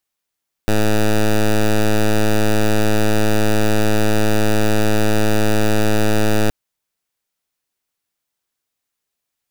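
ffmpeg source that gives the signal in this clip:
-f lavfi -i "aevalsrc='0.211*(2*lt(mod(107*t,1),0.1)-1)':d=5.82:s=44100"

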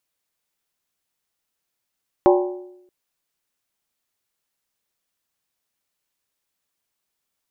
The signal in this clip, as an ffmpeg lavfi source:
-f lavfi -i "aevalsrc='0.316*pow(10,-3*t/0.84)*sin(2*PI*362*t)+0.211*pow(10,-3*t/0.665)*sin(2*PI*577*t)+0.141*pow(10,-3*t/0.575)*sin(2*PI*773.2*t)+0.0944*pow(10,-3*t/0.554)*sin(2*PI*831.2*t)+0.0631*pow(10,-3*t/0.516)*sin(2*PI*960.4*t)+0.0422*pow(10,-3*t/0.492)*sin(2*PI*1056.3*t)':d=0.63:s=44100"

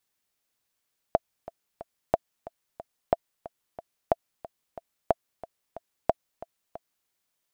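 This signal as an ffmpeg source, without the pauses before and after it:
-f lavfi -i "aevalsrc='pow(10,(-6.5-18.5*gte(mod(t,3*60/182),60/182))/20)*sin(2*PI*670*mod(t,60/182))*exp(-6.91*mod(t,60/182)/0.03)':d=5.93:s=44100"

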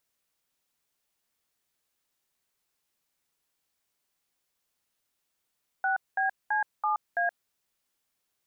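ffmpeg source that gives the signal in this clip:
-f lavfi -i "aevalsrc='0.0473*clip(min(mod(t,0.332),0.124-mod(t,0.332))/0.002,0,1)*(eq(floor(t/0.332),0)*(sin(2*PI*770*mod(t,0.332))+sin(2*PI*1477*mod(t,0.332)))+eq(floor(t/0.332),1)*(sin(2*PI*770*mod(t,0.332))+sin(2*PI*1633*mod(t,0.332)))+eq(floor(t/0.332),2)*(sin(2*PI*852*mod(t,0.332))+sin(2*PI*1633*mod(t,0.332)))+eq(floor(t/0.332),3)*(sin(2*PI*852*mod(t,0.332))+sin(2*PI*1209*mod(t,0.332)))+eq(floor(t/0.332),4)*(sin(2*PI*697*mod(t,0.332))+sin(2*PI*1633*mod(t,0.332))))':d=1.66:s=44100"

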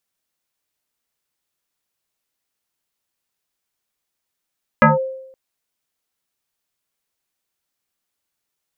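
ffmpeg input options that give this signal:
-f lavfi -i "aevalsrc='0.562*pow(10,-3*t/0.8)*sin(2*PI*527*t+3.7*clip(1-t/0.16,0,1)*sin(2*PI*0.71*527*t))':d=0.52:s=44100"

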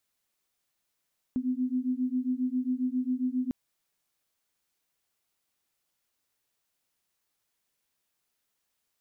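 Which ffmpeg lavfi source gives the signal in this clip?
-f lavfi -i "aevalsrc='0.0335*(sin(2*PI*250*t)+sin(2*PI*257.4*t))':d=2.15:s=44100"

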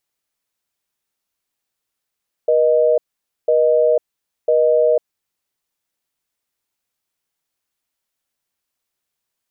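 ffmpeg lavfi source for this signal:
-f lavfi -i "aevalsrc='0.2*(sin(2*PI*480*t)+sin(2*PI*620*t))*clip(min(mod(t,1),0.5-mod(t,1))/0.005,0,1)':d=2.82:s=44100"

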